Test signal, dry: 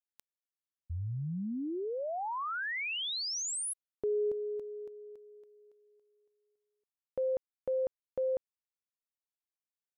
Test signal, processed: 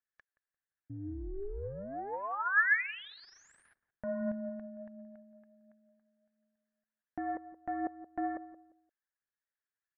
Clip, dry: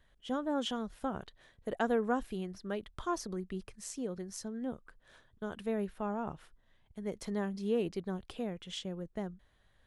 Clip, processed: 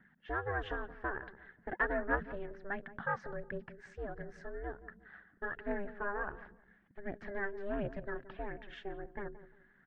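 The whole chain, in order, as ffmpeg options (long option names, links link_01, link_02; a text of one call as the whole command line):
ffmpeg -i in.wav -filter_complex "[0:a]aeval=exprs='val(0)*sin(2*PI*200*n/s)':channel_layout=same,asoftclip=type=tanh:threshold=-26dB,aphaser=in_gain=1:out_gain=1:delay=3.1:decay=0.39:speed=1.4:type=triangular,lowpass=frequency=1700:width_type=q:width=7.7,asplit=2[link_01][link_02];[link_02]adelay=174,lowpass=frequency=880:poles=1,volume=-13dB,asplit=2[link_03][link_04];[link_04]adelay=174,lowpass=frequency=880:poles=1,volume=0.3,asplit=2[link_05][link_06];[link_06]adelay=174,lowpass=frequency=880:poles=1,volume=0.3[link_07];[link_03][link_05][link_07]amix=inputs=3:normalize=0[link_08];[link_01][link_08]amix=inputs=2:normalize=0,volume=-1.5dB" -ar 24000 -c:a libmp3lame -b:a 48k out.mp3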